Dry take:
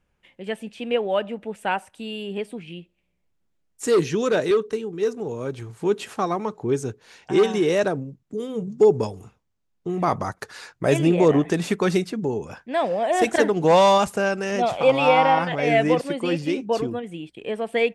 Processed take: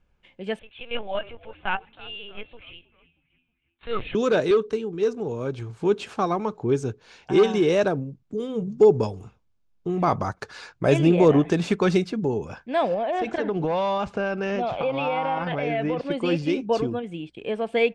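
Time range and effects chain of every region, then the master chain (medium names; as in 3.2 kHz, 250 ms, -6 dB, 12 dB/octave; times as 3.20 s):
0.59–4.15 s: high-pass 840 Hz + LPC vocoder at 8 kHz pitch kept + frequency-shifting echo 317 ms, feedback 49%, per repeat -85 Hz, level -21 dB
12.94–16.11 s: low-pass 3.6 kHz + compression 5:1, threshold -22 dBFS
whole clip: low-pass 5.8 kHz 12 dB/octave; bass shelf 67 Hz +8.5 dB; band-stop 1.9 kHz, Q 11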